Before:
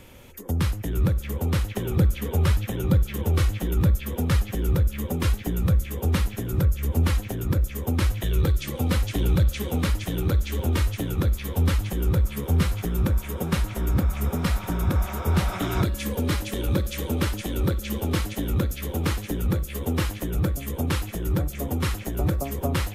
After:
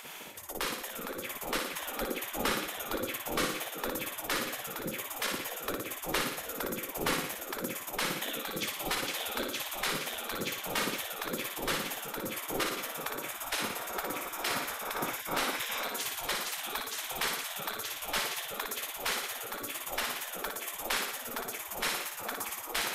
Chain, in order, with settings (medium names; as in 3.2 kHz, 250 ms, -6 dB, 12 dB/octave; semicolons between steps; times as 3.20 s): bass shelf 84 Hz +10 dB; in parallel at +1 dB: volume shaper 114 bpm, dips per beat 1, -14 dB, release 181 ms; on the sum: peaking EQ 64 Hz -13.5 dB 0.67 oct; flutter echo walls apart 10 m, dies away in 0.74 s; reverse; upward compressor, threshold -19 dBFS; reverse; spectral gate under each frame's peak -20 dB weak; trim -6 dB